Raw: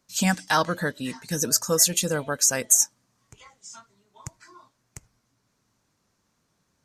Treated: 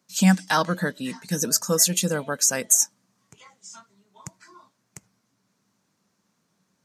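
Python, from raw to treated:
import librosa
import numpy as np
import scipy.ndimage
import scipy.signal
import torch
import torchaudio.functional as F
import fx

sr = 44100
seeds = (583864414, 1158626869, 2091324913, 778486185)

y = scipy.signal.sosfilt(scipy.signal.butter(2, 140.0, 'highpass', fs=sr, output='sos'), x)
y = fx.peak_eq(y, sr, hz=190.0, db=8.5, octaves=0.34)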